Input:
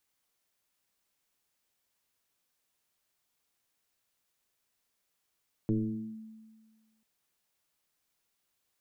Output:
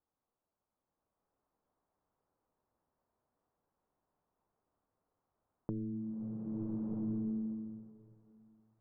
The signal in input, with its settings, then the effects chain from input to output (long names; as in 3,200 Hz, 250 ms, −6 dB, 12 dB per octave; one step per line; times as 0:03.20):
two-operator FM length 1.34 s, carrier 220 Hz, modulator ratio 0.48, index 1.4, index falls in 0.49 s linear, decay 1.59 s, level −23.5 dB
low-pass filter 1,100 Hz 24 dB per octave
downward compressor, threshold −37 dBFS
slow-attack reverb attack 1,290 ms, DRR −5.5 dB